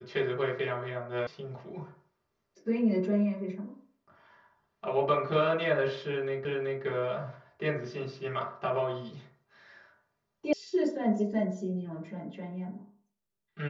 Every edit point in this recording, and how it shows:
1.27 sound cut off
6.45 repeat of the last 0.38 s
10.53 sound cut off

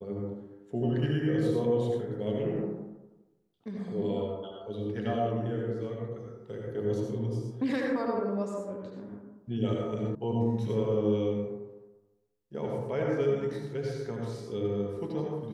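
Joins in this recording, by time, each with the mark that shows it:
10.15 sound cut off

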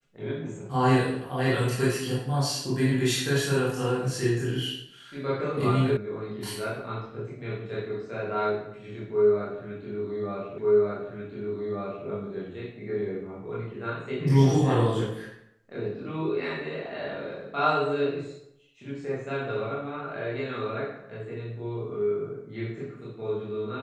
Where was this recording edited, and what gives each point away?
5.97 sound cut off
10.58 repeat of the last 1.49 s

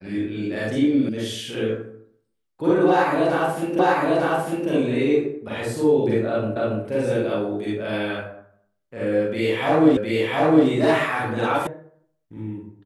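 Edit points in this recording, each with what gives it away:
1.09 sound cut off
3.79 repeat of the last 0.9 s
6.56 repeat of the last 0.28 s
9.97 repeat of the last 0.71 s
11.67 sound cut off

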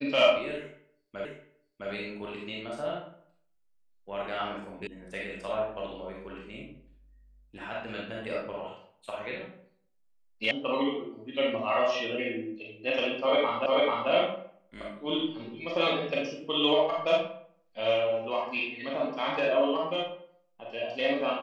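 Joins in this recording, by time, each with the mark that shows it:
1.25 repeat of the last 0.66 s
4.87 sound cut off
10.51 sound cut off
13.66 repeat of the last 0.44 s

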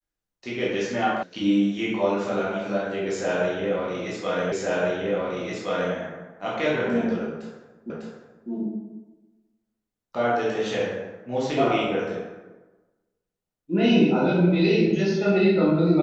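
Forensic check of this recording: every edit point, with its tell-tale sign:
1.23 sound cut off
4.52 repeat of the last 1.42 s
7.9 repeat of the last 0.6 s

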